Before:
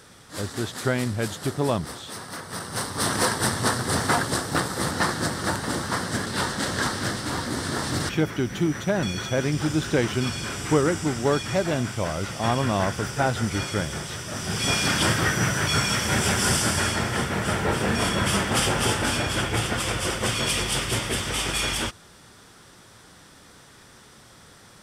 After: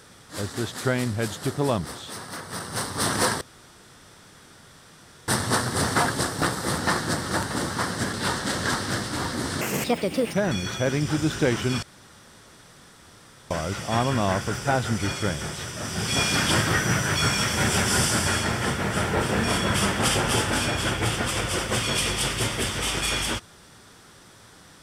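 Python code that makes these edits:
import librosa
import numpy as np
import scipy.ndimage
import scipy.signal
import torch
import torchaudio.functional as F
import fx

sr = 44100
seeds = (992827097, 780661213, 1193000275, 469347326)

y = fx.edit(x, sr, fx.insert_room_tone(at_s=3.41, length_s=1.87),
    fx.speed_span(start_s=7.74, length_s=1.11, speed=1.53),
    fx.room_tone_fill(start_s=10.34, length_s=1.68), tone=tone)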